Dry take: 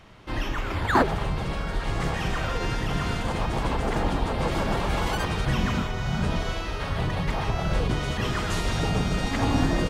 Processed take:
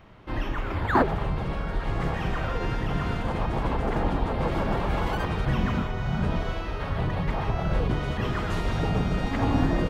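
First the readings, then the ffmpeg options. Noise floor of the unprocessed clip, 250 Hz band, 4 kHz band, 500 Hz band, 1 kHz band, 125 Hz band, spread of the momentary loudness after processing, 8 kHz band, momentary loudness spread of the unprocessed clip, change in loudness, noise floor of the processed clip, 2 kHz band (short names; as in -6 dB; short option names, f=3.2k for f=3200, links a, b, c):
-31 dBFS, 0.0 dB, -6.5 dB, -0.5 dB, -1.0 dB, 0.0 dB, 6 LU, under -10 dB, 6 LU, -1.0 dB, -32 dBFS, -3.0 dB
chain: -af "equalizer=f=8.1k:t=o:w=2.3:g=-12.5"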